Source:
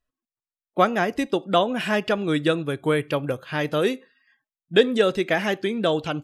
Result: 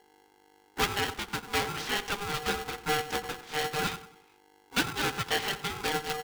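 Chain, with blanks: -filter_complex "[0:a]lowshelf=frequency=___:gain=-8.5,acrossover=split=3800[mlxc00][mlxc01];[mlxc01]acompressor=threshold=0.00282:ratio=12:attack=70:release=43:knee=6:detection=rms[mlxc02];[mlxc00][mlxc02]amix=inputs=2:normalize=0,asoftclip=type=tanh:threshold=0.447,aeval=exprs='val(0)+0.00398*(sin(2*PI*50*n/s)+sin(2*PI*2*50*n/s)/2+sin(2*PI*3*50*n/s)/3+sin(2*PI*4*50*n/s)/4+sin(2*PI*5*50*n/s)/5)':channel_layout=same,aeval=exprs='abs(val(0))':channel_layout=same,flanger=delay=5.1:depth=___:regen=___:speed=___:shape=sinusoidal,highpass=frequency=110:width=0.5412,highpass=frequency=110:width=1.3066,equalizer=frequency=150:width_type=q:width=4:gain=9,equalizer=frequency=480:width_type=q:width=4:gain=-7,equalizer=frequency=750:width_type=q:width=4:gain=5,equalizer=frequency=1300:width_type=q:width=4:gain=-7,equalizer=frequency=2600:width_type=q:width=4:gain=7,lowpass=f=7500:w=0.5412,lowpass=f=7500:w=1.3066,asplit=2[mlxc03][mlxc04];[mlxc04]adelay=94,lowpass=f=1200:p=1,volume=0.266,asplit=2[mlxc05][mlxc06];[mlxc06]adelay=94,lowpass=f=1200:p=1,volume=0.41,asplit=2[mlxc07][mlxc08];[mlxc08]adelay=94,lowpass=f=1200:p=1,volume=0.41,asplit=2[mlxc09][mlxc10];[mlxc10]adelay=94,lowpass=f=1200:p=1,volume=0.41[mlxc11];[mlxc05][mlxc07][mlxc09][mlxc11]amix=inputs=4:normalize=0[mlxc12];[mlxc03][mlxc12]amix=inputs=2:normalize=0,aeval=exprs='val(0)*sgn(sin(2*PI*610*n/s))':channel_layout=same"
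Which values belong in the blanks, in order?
250, 8.2, -38, 1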